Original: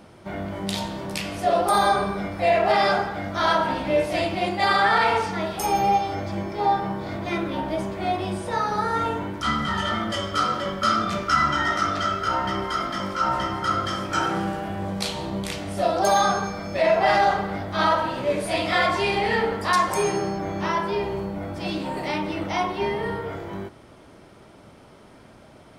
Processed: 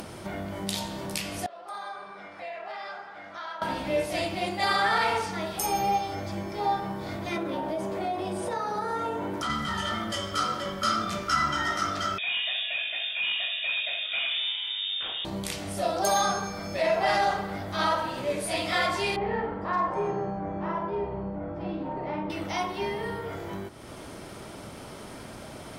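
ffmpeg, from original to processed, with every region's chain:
-filter_complex "[0:a]asettb=1/sr,asplit=3[s0][s1][s2];[s0]atrim=end=1.464[s3];[s1]atrim=start=1.46:end=3.62,asetpts=PTS-STARTPTS,afade=t=in:d=0.004:c=qsin,afade=t=out:st=2.156:d=0.004:c=qsin,lowpass=1500,aderivative[s4];[s2]atrim=start=3.616[s5];[s3][s4]acrossfade=d=0.004:c1=hsin:c2=qsin[s6];[s6][s5]acrossfade=d=0.004:c1=qsin:c2=hsin,asettb=1/sr,asplit=3[s7][s8][s9];[s7]atrim=end=7.364[s10];[s8]atrim=start=7.36:end=9.5,asetpts=PTS-STARTPTS,afade=t=in:d=0.004:c=qsin,afade=t=out:st=2.136:d=0.004:c=qsin,equalizer=f=540:w=0.5:g=9,acompressor=threshold=0.0794:ratio=4:attack=3.2:release=140:knee=1:detection=peak,highpass=73[s11];[s9]atrim=start=9.496[s12];[s10][s11]acrossfade=d=0.004:c1=hsin:c2=qsin[s13];[s13][s12]acrossfade=d=0.004:c1=qsin:c2=hsin,asettb=1/sr,asplit=3[s14][s15][s16];[s14]atrim=end=12.184[s17];[s15]atrim=start=12.18:end=15.25,asetpts=PTS-STARTPTS,afade=t=in:d=0.004:c=qsin,afade=t=out:st=3.066:d=0.004:c=qsin,asoftclip=type=hard:threshold=0.0891,lowpass=f=3200:t=q:w=0.5098,lowpass=f=3200:t=q:w=0.6013,lowpass=f=3200:t=q:w=0.9,lowpass=f=3200:t=q:w=2.563,afreqshift=-3800[s18];[s16]atrim=start=15.246[s19];[s17][s18]acrossfade=d=0.004:c1=hsin:c2=qsin[s20];[s20][s19]acrossfade=d=0.004:c1=qsin:c2=hsin,asettb=1/sr,asplit=3[s21][s22][s23];[s21]atrim=end=19.164[s24];[s22]atrim=start=19.16:end=22.3,asetpts=PTS-STARTPTS,afade=t=in:d=0.004:c=qsin,afade=t=out:st=3.136:d=0.004:c=qsin,lowpass=1200,asplit=2[s25][s26];[s26]adelay=47,volume=0.562[s27];[s25][s27]amix=inputs=2:normalize=0,atrim=end_sample=138474[s28];[s23]atrim=start=22.296[s29];[s24][s28]acrossfade=d=0.004:c1=hsin:c2=qsin[s30];[s30][s29]acrossfade=d=0.004:c1=qsin:c2=hsin,aemphasis=mode=production:type=cd,acompressor=mode=upward:threshold=0.0631:ratio=2.5,volume=0.531"

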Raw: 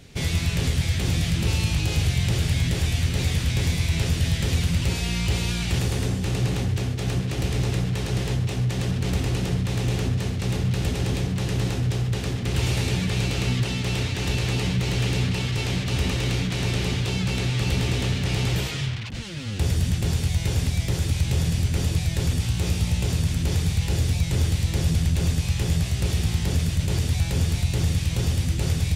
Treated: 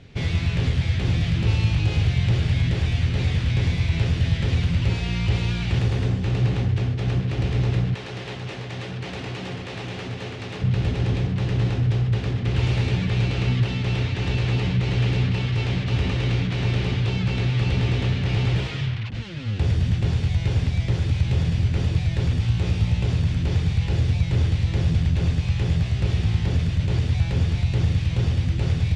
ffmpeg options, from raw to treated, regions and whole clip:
-filter_complex "[0:a]asettb=1/sr,asplit=3[s0][s1][s2];[s0]atrim=end=7.944[s3];[s1]atrim=start=7.94:end=10.62,asetpts=PTS-STARTPTS,afade=t=in:d=0.004:c=qsin,afade=t=out:st=2.676:d=0.004:c=qsin,highpass=f=530:p=1,aecho=1:1:333:0.596,atrim=end_sample=118188[s4];[s2]atrim=start=10.616[s5];[s3][s4]acrossfade=d=0.004:c1=hsin:c2=qsin[s6];[s6][s5]acrossfade=d=0.004:c1=qsin:c2=hsin,lowpass=3500,equalizer=f=110:t=o:w=0.31:g=6.5"

